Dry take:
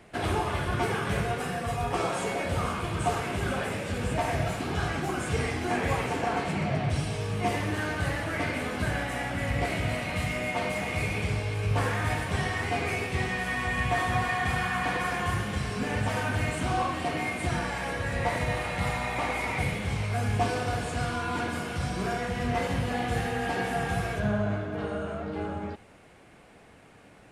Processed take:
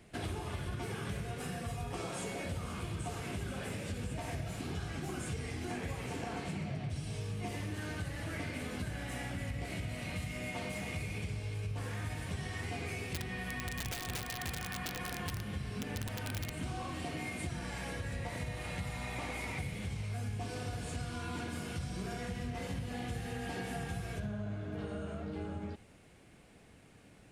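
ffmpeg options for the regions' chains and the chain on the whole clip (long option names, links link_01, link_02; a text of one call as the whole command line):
ffmpeg -i in.wav -filter_complex "[0:a]asettb=1/sr,asplit=3[link_01][link_02][link_03];[link_01]atrim=end=13.134[link_04];[link_02]atrim=start=13.13:end=16.63,asetpts=PTS-STARTPTS,afade=type=in:duration=0.004:curve=qsin,afade=type=out:start_time=3.496:duration=0.004:curve=qsin,equalizer=frequency=7100:width=1.1:gain=-7.5,aeval=exprs='(mod(10*val(0)+1,2)-1)/10':channel_layout=same[link_05];[link_03]atrim=start=16.626[link_06];[link_04][link_05]acrossfade=duration=0.004:curve1=hsin:curve2=qsin[link_07];[link_07][link_06]acrossfade=duration=0.004:curve1=qsin:curve2=hsin,equalizer=frequency=980:width=0.44:gain=-9,acompressor=threshold=-34dB:ratio=6,volume=-1.5dB" out.wav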